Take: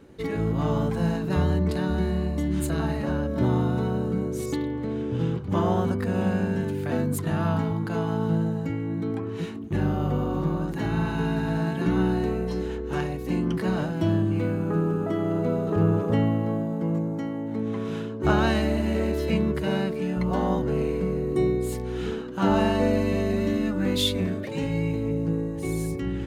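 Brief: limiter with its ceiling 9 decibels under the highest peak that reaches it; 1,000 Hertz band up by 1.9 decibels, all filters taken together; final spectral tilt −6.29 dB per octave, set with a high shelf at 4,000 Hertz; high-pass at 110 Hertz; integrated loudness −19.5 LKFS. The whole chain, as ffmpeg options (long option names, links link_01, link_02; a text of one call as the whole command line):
ffmpeg -i in.wav -af "highpass=110,equalizer=frequency=1000:width_type=o:gain=3,highshelf=frequency=4000:gain=-8,volume=8dB,alimiter=limit=-9.5dB:level=0:latency=1" out.wav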